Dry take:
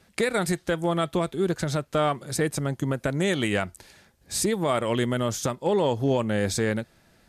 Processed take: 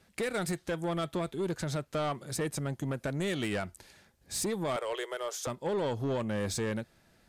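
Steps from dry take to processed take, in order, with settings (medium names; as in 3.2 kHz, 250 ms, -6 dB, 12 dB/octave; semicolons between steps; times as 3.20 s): 4.76–5.47 s: elliptic high-pass 400 Hz, stop band 40 dB; saturation -21 dBFS, distortion -13 dB; trim -5 dB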